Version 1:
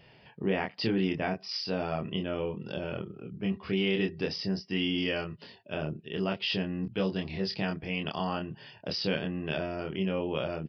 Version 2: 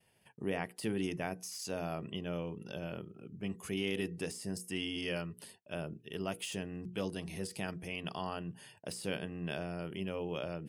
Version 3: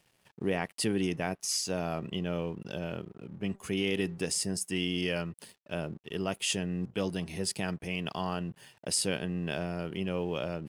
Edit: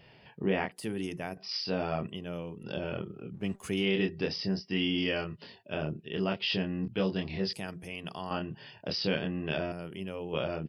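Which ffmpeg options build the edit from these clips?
-filter_complex "[1:a]asplit=4[a][b][c][d];[0:a]asplit=6[e][f][g][h][i][j];[e]atrim=end=0.722[k];[a]atrim=start=0.718:end=1.372[l];[f]atrim=start=1.368:end=2.072[m];[b]atrim=start=2.068:end=2.632[n];[g]atrim=start=2.628:end=3.41[o];[2:a]atrim=start=3.31:end=3.87[p];[h]atrim=start=3.77:end=7.532[q];[c]atrim=start=7.528:end=8.312[r];[i]atrim=start=8.308:end=9.722[s];[d]atrim=start=9.718:end=10.332[t];[j]atrim=start=10.328[u];[k][l]acrossfade=d=0.004:c1=hsin:c2=hsin[v];[v][m]acrossfade=d=0.004:c1=hsin:c2=hsin[w];[w][n]acrossfade=d=0.004:c1=hsin:c2=hsin[x];[x][o]acrossfade=d=0.004:c1=hsin:c2=hsin[y];[y][p]acrossfade=d=0.1:c1=tri:c2=tri[z];[z][q]acrossfade=d=0.1:c1=tri:c2=tri[aa];[aa][r]acrossfade=d=0.004:c1=hsin:c2=hsin[ab];[ab][s]acrossfade=d=0.004:c1=hsin:c2=hsin[ac];[ac][t]acrossfade=d=0.004:c1=hsin:c2=hsin[ad];[ad][u]acrossfade=d=0.004:c1=hsin:c2=hsin"

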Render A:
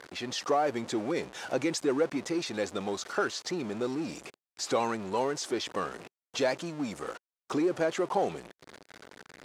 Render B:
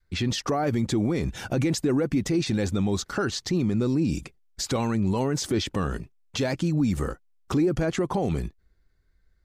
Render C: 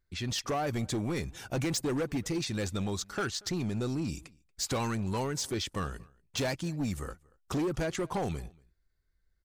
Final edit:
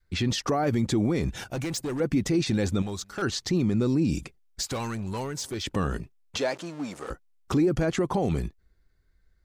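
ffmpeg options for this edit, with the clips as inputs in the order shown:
-filter_complex "[2:a]asplit=3[a][b][c];[1:a]asplit=5[d][e][f][g][h];[d]atrim=end=1.442[i];[a]atrim=start=1.438:end=2.002[j];[e]atrim=start=1.998:end=2.822[k];[b]atrim=start=2.818:end=3.222[l];[f]atrim=start=3.218:end=4.632[m];[c]atrim=start=4.628:end=5.642[n];[g]atrim=start=5.638:end=6.382[o];[0:a]atrim=start=6.378:end=7.102[p];[h]atrim=start=7.098[q];[i][j]acrossfade=d=0.004:c1=hsin:c2=hsin[r];[r][k]acrossfade=d=0.004:c1=hsin:c2=hsin[s];[s][l]acrossfade=d=0.004:c1=hsin:c2=hsin[t];[t][m]acrossfade=d=0.004:c1=hsin:c2=hsin[u];[u][n]acrossfade=d=0.004:c1=hsin:c2=hsin[v];[v][o]acrossfade=d=0.004:c1=hsin:c2=hsin[w];[w][p]acrossfade=d=0.004:c1=hsin:c2=hsin[x];[x][q]acrossfade=d=0.004:c1=hsin:c2=hsin"

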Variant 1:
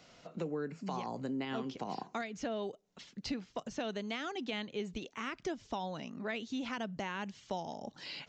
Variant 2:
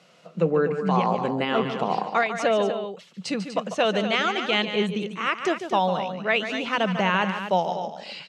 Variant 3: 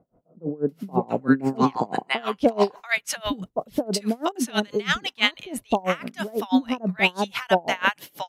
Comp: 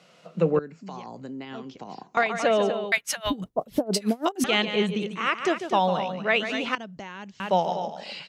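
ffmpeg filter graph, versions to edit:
-filter_complex "[0:a]asplit=2[a][b];[1:a]asplit=4[c][d][e][f];[c]atrim=end=0.592[g];[a]atrim=start=0.588:end=2.172[h];[d]atrim=start=2.168:end=2.922[i];[2:a]atrim=start=2.918:end=4.442[j];[e]atrim=start=4.438:end=6.752[k];[b]atrim=start=6.748:end=7.402[l];[f]atrim=start=7.398[m];[g][h]acrossfade=d=0.004:c1=hsin:c2=hsin[n];[n][i]acrossfade=d=0.004:c1=hsin:c2=hsin[o];[o][j]acrossfade=d=0.004:c1=hsin:c2=hsin[p];[p][k]acrossfade=d=0.004:c1=hsin:c2=hsin[q];[q][l]acrossfade=d=0.004:c1=hsin:c2=hsin[r];[r][m]acrossfade=d=0.004:c1=hsin:c2=hsin"

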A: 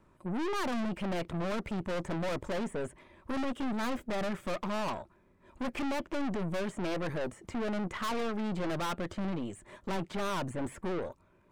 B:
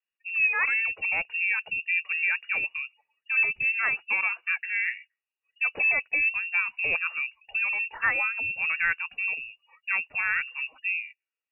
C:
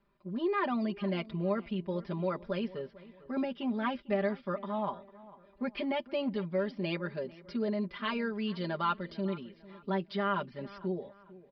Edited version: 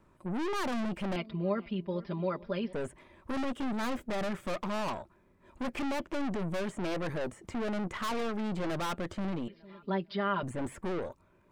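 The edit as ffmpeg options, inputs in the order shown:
-filter_complex "[2:a]asplit=2[a][b];[0:a]asplit=3[c][d][e];[c]atrim=end=1.162[f];[a]atrim=start=1.158:end=2.732[g];[d]atrim=start=2.728:end=9.482[h];[b]atrim=start=9.478:end=10.432[i];[e]atrim=start=10.428[j];[f][g]acrossfade=d=0.004:c1=hsin:c2=hsin[k];[k][h]acrossfade=d=0.004:c1=hsin:c2=hsin[l];[l][i]acrossfade=d=0.004:c1=hsin:c2=hsin[m];[m][j]acrossfade=d=0.004:c1=hsin:c2=hsin"

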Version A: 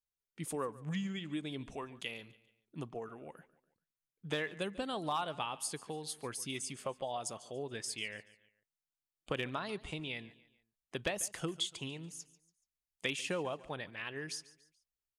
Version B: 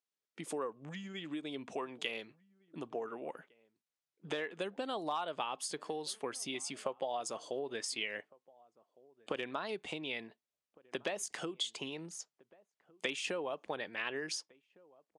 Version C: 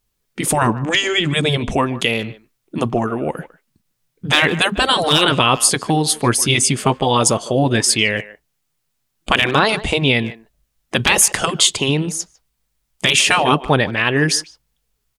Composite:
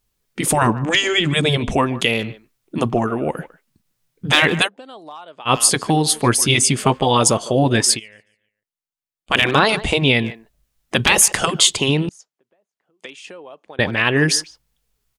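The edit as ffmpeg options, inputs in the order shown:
-filter_complex "[1:a]asplit=2[a][b];[2:a]asplit=4[c][d][e][f];[c]atrim=end=4.69[g];[a]atrim=start=4.63:end=5.51[h];[d]atrim=start=5.45:end=8[i];[0:a]atrim=start=7.94:end=9.35[j];[e]atrim=start=9.29:end=12.092[k];[b]atrim=start=12.088:end=13.792[l];[f]atrim=start=13.788[m];[g][h]acrossfade=d=0.06:c1=tri:c2=tri[n];[n][i]acrossfade=d=0.06:c1=tri:c2=tri[o];[o][j]acrossfade=d=0.06:c1=tri:c2=tri[p];[p][k]acrossfade=d=0.06:c1=tri:c2=tri[q];[q][l]acrossfade=d=0.004:c1=hsin:c2=hsin[r];[r][m]acrossfade=d=0.004:c1=hsin:c2=hsin"

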